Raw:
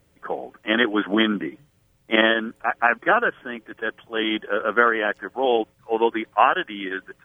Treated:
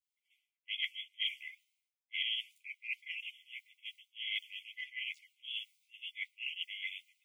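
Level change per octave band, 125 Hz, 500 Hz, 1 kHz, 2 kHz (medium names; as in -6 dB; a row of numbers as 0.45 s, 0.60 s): under -40 dB, under -40 dB, under -40 dB, -18.5 dB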